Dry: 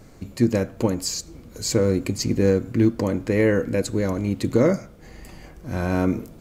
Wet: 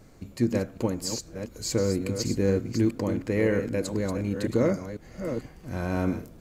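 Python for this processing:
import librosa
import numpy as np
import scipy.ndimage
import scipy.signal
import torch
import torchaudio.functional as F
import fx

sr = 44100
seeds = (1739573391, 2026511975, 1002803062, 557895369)

y = fx.reverse_delay(x, sr, ms=497, wet_db=-8)
y = F.gain(torch.from_numpy(y), -5.5).numpy()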